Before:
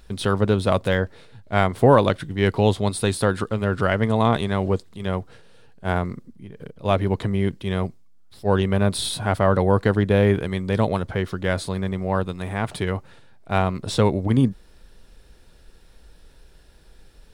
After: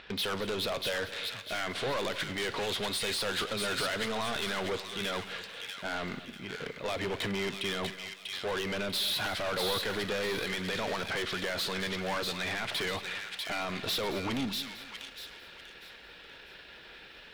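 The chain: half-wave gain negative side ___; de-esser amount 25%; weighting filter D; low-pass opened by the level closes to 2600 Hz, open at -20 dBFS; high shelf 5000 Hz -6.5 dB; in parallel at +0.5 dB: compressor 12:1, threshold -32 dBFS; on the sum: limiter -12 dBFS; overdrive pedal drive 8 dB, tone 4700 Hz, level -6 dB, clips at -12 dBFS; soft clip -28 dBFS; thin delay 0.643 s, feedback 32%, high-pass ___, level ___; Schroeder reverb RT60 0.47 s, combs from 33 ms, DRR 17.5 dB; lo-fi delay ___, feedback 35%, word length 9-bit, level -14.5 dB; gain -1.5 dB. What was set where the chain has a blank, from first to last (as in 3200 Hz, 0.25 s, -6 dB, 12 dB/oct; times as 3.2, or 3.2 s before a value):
-3 dB, 1900 Hz, -3 dB, 0.22 s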